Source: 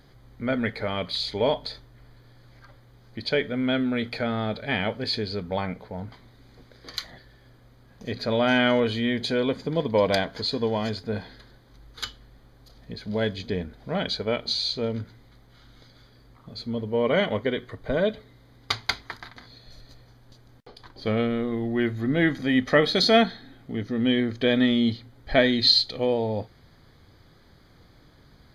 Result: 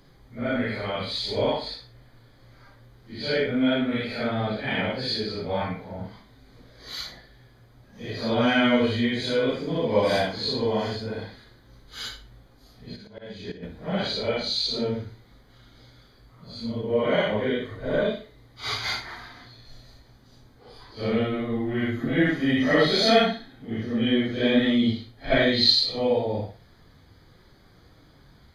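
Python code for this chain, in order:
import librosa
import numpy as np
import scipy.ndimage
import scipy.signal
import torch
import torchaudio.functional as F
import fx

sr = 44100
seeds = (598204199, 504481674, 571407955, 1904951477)

y = fx.phase_scramble(x, sr, seeds[0], window_ms=200)
y = fx.auto_swell(y, sr, attack_ms=408.0, at=(12.95, 13.62), fade=0.02)
y = fx.room_flutter(y, sr, wall_m=10.0, rt60_s=0.31)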